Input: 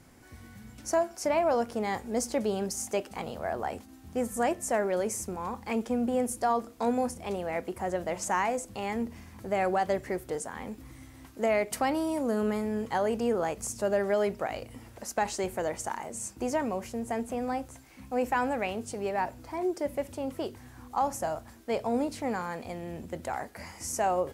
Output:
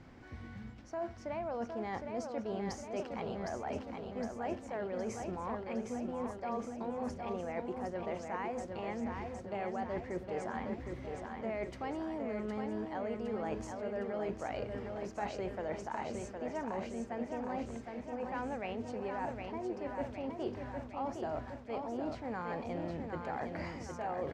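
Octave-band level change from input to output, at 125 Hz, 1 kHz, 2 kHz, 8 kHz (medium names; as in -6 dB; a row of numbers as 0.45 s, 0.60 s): -3.0 dB, -9.0 dB, -9.0 dB, -18.5 dB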